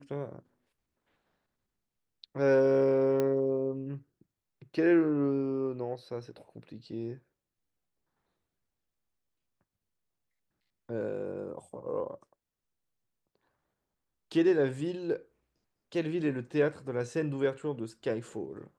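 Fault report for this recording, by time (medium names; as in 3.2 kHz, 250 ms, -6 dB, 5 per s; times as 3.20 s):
3.20 s: pop -17 dBFS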